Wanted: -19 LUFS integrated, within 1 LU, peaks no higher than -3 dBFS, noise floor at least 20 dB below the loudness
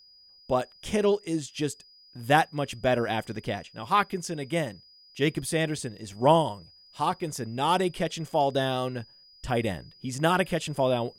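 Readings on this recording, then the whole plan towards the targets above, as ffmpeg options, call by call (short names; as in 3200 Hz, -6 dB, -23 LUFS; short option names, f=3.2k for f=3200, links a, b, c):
steady tone 4900 Hz; tone level -53 dBFS; loudness -27.5 LUFS; peak -7.0 dBFS; loudness target -19.0 LUFS
-> -af "bandreject=f=4.9k:w=30"
-af "volume=8.5dB,alimiter=limit=-3dB:level=0:latency=1"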